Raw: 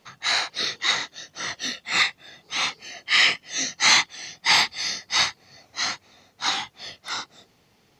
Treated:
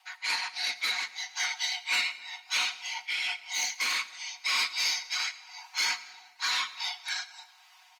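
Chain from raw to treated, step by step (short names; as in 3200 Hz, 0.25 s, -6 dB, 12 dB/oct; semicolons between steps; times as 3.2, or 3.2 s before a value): comb 5.6 ms, depth 81%; in parallel at -0.5 dB: compressor 16:1, threshold -31 dBFS, peak gain reduction 21 dB; on the sum: limiter -12.5 dBFS, peak gain reduction 11 dB; rippled Chebyshev high-pass 500 Hz, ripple 3 dB; rotary speaker horn 5.5 Hz, later 1 Hz, at 2.17; soft clip -20.5 dBFS, distortion -16 dB; frequency shift +210 Hz; on a send at -16 dB: reverb RT60 1.3 s, pre-delay 40 ms; on the sum: Opus 32 kbps 48000 Hz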